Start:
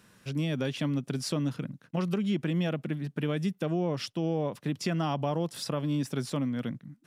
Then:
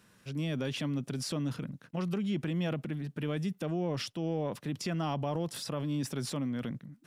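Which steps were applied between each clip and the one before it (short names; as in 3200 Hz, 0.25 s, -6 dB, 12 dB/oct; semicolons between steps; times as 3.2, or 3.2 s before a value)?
transient shaper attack -2 dB, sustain +6 dB; gain -3.5 dB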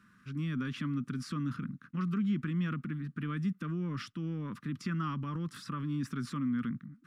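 EQ curve 130 Hz 0 dB, 240 Hz +6 dB, 730 Hz -26 dB, 1200 Hz +9 dB, 2800 Hz -5 dB, 12000 Hz -11 dB; gain -2 dB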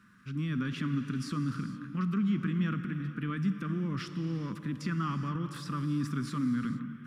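non-linear reverb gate 0.49 s flat, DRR 8 dB; gain +2 dB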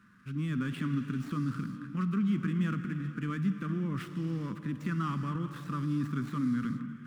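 median filter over 9 samples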